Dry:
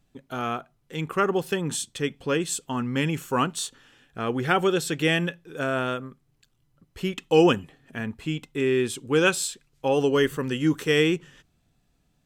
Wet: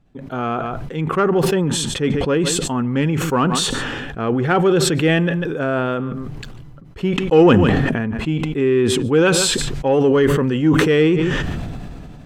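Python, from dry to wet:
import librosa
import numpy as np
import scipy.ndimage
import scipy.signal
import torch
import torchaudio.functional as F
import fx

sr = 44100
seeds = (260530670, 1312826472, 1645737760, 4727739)

p1 = fx.lowpass(x, sr, hz=1200.0, slope=6)
p2 = 10.0 ** (-22.0 / 20.0) * np.tanh(p1 / 10.0 ** (-22.0 / 20.0))
p3 = p1 + (p2 * librosa.db_to_amplitude(-8.0))
p4 = p3 + 10.0 ** (-22.5 / 20.0) * np.pad(p3, (int(146 * sr / 1000.0), 0))[:len(p3)]
p5 = fx.sustainer(p4, sr, db_per_s=22.0)
y = p5 * librosa.db_to_amplitude(5.0)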